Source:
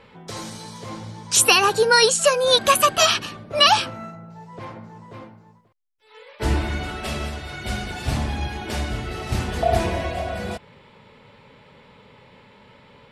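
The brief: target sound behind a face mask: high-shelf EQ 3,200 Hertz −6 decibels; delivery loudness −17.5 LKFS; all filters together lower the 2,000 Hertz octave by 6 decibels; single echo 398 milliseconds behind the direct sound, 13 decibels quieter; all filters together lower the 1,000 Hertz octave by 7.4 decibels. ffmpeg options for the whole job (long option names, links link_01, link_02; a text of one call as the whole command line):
ffmpeg -i in.wav -af "equalizer=frequency=1000:width_type=o:gain=-8,equalizer=frequency=2000:width_type=o:gain=-3.5,highshelf=frequency=3200:gain=-6,aecho=1:1:398:0.224,volume=6.5dB" out.wav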